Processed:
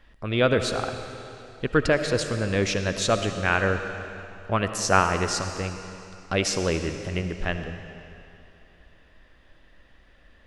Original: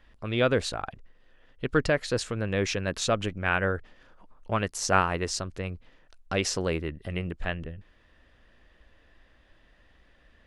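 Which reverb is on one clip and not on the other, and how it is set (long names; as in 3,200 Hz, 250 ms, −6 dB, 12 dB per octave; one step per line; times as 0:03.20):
comb and all-pass reverb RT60 2.8 s, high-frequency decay 0.95×, pre-delay 35 ms, DRR 7.5 dB
level +3 dB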